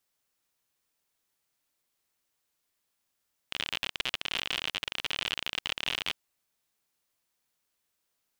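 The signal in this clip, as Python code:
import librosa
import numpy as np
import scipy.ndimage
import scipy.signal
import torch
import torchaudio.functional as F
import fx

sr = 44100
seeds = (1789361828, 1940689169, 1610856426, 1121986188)

y = fx.geiger_clicks(sr, seeds[0], length_s=2.61, per_s=59.0, level_db=-14.5)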